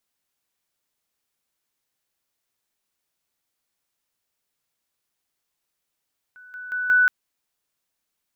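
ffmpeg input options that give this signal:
-f lavfi -i "aevalsrc='pow(10,(-43.5+10*floor(t/0.18))/20)*sin(2*PI*1490*t)':d=0.72:s=44100"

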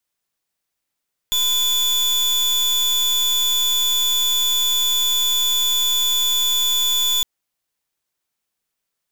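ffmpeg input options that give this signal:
-f lavfi -i "aevalsrc='0.119*(2*lt(mod(3470*t,1),0.35)-1)':d=5.91:s=44100"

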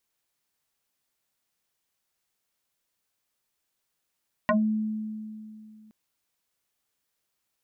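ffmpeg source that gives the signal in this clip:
-f lavfi -i "aevalsrc='0.126*pow(10,-3*t/2.62)*sin(2*PI*216*t+5.1*pow(10,-3*t/0.18)*sin(2*PI*1.94*216*t))':d=1.42:s=44100"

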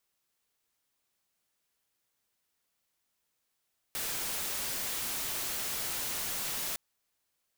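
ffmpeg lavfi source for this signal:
-f lavfi -i "anoisesrc=c=white:a=0.0308:d=2.81:r=44100:seed=1"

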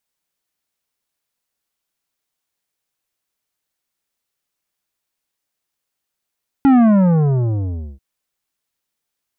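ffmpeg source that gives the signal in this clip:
-f lavfi -i "aevalsrc='0.355*clip((1.34-t)/1.24,0,1)*tanh(3.55*sin(2*PI*280*1.34/log(65/280)*(exp(log(65/280)*t/1.34)-1)))/tanh(3.55)':d=1.34:s=44100"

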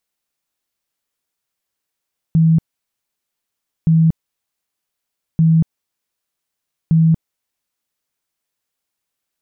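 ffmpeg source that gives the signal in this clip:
-f lavfi -i "aevalsrc='0.376*sin(2*PI*162*mod(t,1.52))*lt(mod(t,1.52),38/162)':d=6.08:s=44100"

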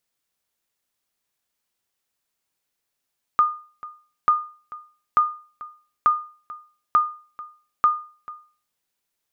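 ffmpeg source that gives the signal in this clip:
-f lavfi -i "aevalsrc='0.335*(sin(2*PI*1220*mod(t,0.89))*exp(-6.91*mod(t,0.89)/0.4)+0.106*sin(2*PI*1220*max(mod(t,0.89)-0.44,0))*exp(-6.91*max(mod(t,0.89)-0.44,0)/0.4))':d=5.34:s=44100"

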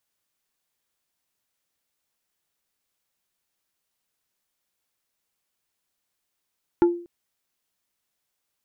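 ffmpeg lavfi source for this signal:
-f lavfi -i "aevalsrc='0.282*pow(10,-3*t/0.44)*sin(2*PI*346*t)+0.0944*pow(10,-3*t/0.147)*sin(2*PI*865*t)+0.0316*pow(10,-3*t/0.083)*sin(2*PI*1384*t)+0.0106*pow(10,-3*t/0.064)*sin(2*PI*1730*t)+0.00355*pow(10,-3*t/0.047)*sin(2*PI*2249*t)':d=0.24:s=44100"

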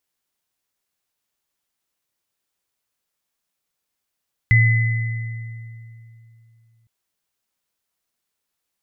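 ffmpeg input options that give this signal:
-f lavfi -i "aevalsrc='0.299*pow(10,-3*t/3)*sin(2*PI*114*t)+0.2*pow(10,-3*t/2.01)*sin(2*PI*2020*t)':d=2.36:s=44100"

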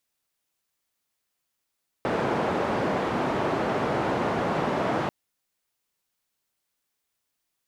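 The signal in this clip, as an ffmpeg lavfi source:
-f lavfi -i "anoisesrc=c=white:d=3.04:r=44100:seed=1,highpass=f=130,lowpass=f=800,volume=-6.5dB"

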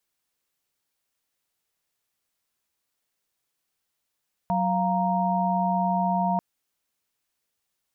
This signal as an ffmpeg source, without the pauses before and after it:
-f lavfi -i "aevalsrc='0.0531*(sin(2*PI*185*t)+sin(2*PI*698.46*t)+sin(2*PI*932.33*t))':d=1.89:s=44100"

